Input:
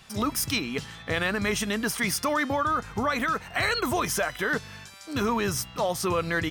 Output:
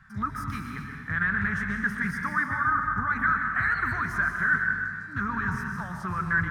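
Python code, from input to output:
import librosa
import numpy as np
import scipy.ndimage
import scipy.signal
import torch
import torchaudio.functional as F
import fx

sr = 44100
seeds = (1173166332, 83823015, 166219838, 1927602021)

y = fx.curve_eq(x, sr, hz=(180.0, 520.0, 1600.0, 2700.0), db=(0, -27, 8, -22))
y = fx.rev_plate(y, sr, seeds[0], rt60_s=1.7, hf_ratio=0.9, predelay_ms=115, drr_db=2.5)
y = fx.doppler_dist(y, sr, depth_ms=0.17)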